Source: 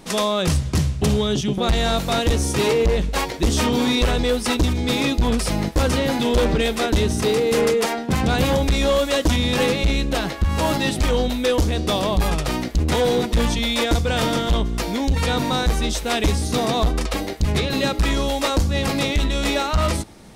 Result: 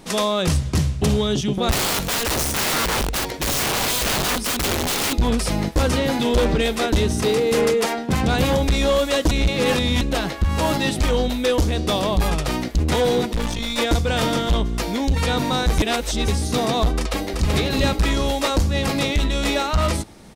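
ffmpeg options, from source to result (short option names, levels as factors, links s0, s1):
-filter_complex "[0:a]asettb=1/sr,asplit=3[s0][s1][s2];[s0]atrim=end=1.714[s3];[s1]atrim=start=1.71:end=5.13,asetpts=PTS-STARTPTS,afade=t=in:d=0.004:c=qsin,afade=t=out:st=3.416:d=0.004:c=qsin,aeval=exprs='(mod(7.08*val(0)+1,2)-1)/7.08':c=same[s4];[s2]atrim=start=5.126[s5];[s3][s4]acrossfade=d=0.004:c1=hsin:c2=qsin[s6];[s6][s5]acrossfade=d=0.004:c1=qsin:c2=hsin,asettb=1/sr,asplit=3[s7][s8][s9];[s7]atrim=end=10.994[s10];[s8]atrim=start=10.99:end=11.68,asetpts=PTS-STARTPTS,afade=t=in:d=0.004:c=qsin,afade=t=out:st=0.686:d=0.004:c=qsin,aeval=exprs='sgn(val(0))*max(abs(val(0))-0.0015,0)':c=same[s11];[s9]atrim=start=11.676[s12];[s10][s11]acrossfade=d=0.004:c1=hsin:c2=qsin[s13];[s13][s12]acrossfade=d=0.004:c1=qsin:c2=hsin,asettb=1/sr,asplit=3[s14][s15][s16];[s14]atrim=end=13.334[s17];[s15]atrim=start=13.33:end=13.78,asetpts=PTS-STARTPTS,afade=t=in:d=0.004:c=qsin,afade=t=out:st=0.446:d=0.004:c=qsin,aeval=exprs='(tanh(8.91*val(0)+0.7)-tanh(0.7))/8.91':c=same[s18];[s16]atrim=start=13.776[s19];[s17][s18]acrossfade=d=0.004:c1=hsin:c2=qsin[s20];[s20][s19]acrossfade=d=0.004:c1=qsin:c2=hsin,asplit=2[s21][s22];[s22]afade=t=in:st=16.95:d=0.01,afade=t=out:st=17.55:d=0.01,aecho=0:1:380|760|1140|1520|1900|2280:0.707946|0.318576|0.143359|0.0645116|0.0290302|0.0130636[s23];[s21][s23]amix=inputs=2:normalize=0,asplit=5[s24][s25][s26][s27][s28];[s24]atrim=end=9.312[s29];[s25]atrim=start=9.308:end=10.012,asetpts=PTS-STARTPTS,areverse[s30];[s26]atrim=start=10.008:end=15.782[s31];[s27]atrim=start=15.778:end=16.282,asetpts=PTS-STARTPTS,areverse[s32];[s28]atrim=start=16.278[s33];[s29][s30]acrossfade=d=0.004:c1=hsin:c2=hsin[s34];[s34][s31]acrossfade=d=0.004:c1=hsin:c2=hsin[s35];[s35][s32]acrossfade=d=0.004:c1=hsin:c2=hsin[s36];[s36][s33]acrossfade=d=0.004:c1=hsin:c2=hsin"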